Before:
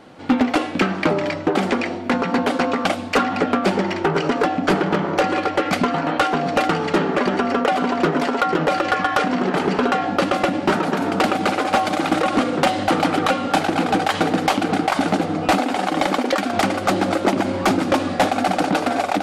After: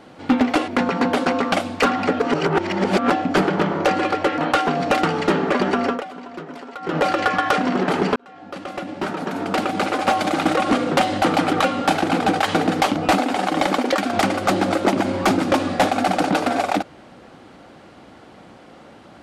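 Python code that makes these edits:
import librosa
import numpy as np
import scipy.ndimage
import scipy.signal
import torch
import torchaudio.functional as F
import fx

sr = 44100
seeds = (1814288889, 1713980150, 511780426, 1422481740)

y = fx.edit(x, sr, fx.cut(start_s=0.68, length_s=1.33),
    fx.reverse_span(start_s=3.53, length_s=0.9),
    fx.cut(start_s=5.71, length_s=0.33),
    fx.fade_down_up(start_s=7.52, length_s=1.13, db=-15.5, fade_s=0.18),
    fx.fade_in_span(start_s=9.82, length_s=2.06),
    fx.cut(start_s=14.62, length_s=0.74), tone=tone)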